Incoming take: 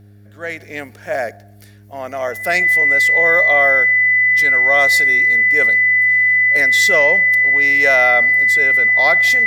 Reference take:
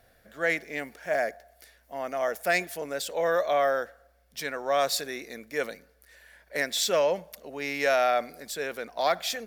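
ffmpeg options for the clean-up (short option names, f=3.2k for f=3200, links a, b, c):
-af "bandreject=f=102.2:t=h:w=4,bandreject=f=204.4:t=h:w=4,bandreject=f=306.6:t=h:w=4,bandreject=f=408.8:t=h:w=4,bandreject=f=2k:w=30,asetnsamples=n=441:p=0,asendcmd='0.6 volume volume -6dB',volume=0dB"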